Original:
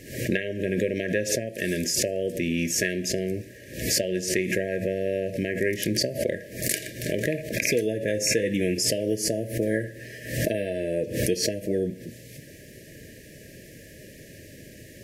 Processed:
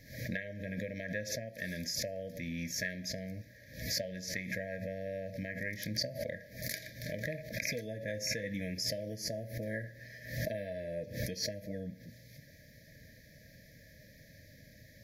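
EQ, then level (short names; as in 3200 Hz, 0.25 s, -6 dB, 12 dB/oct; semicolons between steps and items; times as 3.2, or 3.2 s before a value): fixed phaser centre 1900 Hz, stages 8; -7.5 dB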